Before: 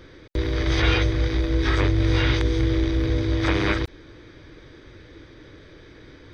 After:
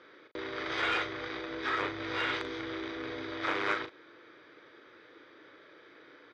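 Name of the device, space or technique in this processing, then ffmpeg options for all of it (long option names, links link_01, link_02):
intercom: -filter_complex "[0:a]highpass=420,lowpass=3600,equalizer=frequency=1300:width_type=o:width=0.44:gain=6,asoftclip=type=tanh:threshold=-14.5dB,asplit=2[link_01][link_02];[link_02]adelay=38,volume=-8dB[link_03];[link_01][link_03]amix=inputs=2:normalize=0,volume=-6dB"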